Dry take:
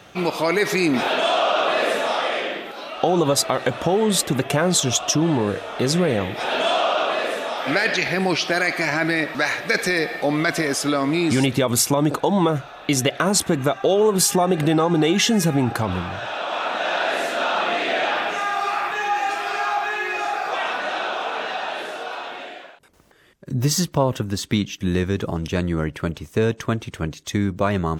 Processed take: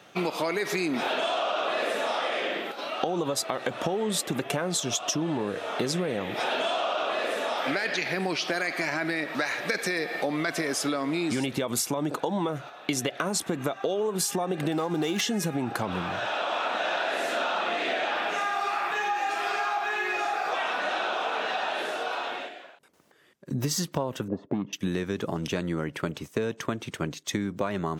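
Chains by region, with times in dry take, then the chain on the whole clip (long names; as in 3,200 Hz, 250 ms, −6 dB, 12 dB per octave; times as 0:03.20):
0:14.72–0:15.21: high-shelf EQ 7,300 Hz +11.5 dB + windowed peak hold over 3 samples
0:24.28–0:24.73: notch comb filter 770 Hz + gain into a clipping stage and back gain 15 dB + envelope-controlled low-pass 440–1,100 Hz up, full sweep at −17 dBFS
whole clip: noise gate −34 dBFS, range −6 dB; high-pass filter 160 Hz 12 dB per octave; downward compressor 6 to 1, threshold −25 dBFS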